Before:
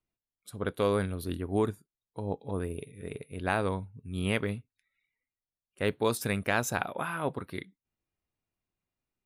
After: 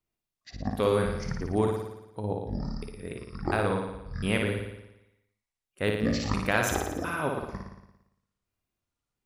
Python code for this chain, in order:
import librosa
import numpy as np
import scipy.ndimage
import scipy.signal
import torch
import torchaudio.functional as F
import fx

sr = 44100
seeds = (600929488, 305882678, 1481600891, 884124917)

y = fx.pitch_trill(x, sr, semitones=-12.0, every_ms=352)
y = fx.room_flutter(y, sr, wall_m=9.8, rt60_s=0.9)
y = y * librosa.db_to_amplitude(1.0)